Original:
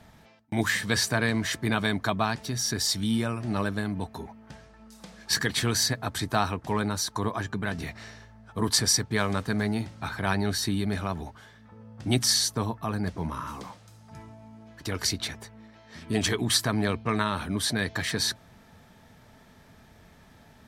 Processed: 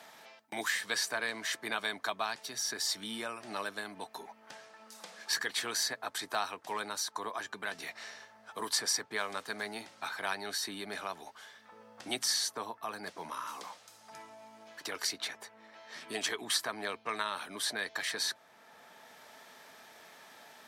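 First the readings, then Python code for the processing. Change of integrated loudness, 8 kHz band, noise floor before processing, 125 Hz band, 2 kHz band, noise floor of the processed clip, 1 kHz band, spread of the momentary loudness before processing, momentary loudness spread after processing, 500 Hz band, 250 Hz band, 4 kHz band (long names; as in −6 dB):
−8.0 dB, −7.0 dB, −55 dBFS, −29.0 dB, −5.0 dB, −60 dBFS, −6.0 dB, 15 LU, 22 LU, −9.5 dB, −18.5 dB, −6.0 dB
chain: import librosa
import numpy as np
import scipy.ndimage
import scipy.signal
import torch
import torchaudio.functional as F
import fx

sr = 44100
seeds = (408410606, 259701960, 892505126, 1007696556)

y = scipy.signal.sosfilt(scipy.signal.butter(2, 550.0, 'highpass', fs=sr, output='sos'), x)
y = fx.band_squash(y, sr, depth_pct=40)
y = F.gain(torch.from_numpy(y), -5.0).numpy()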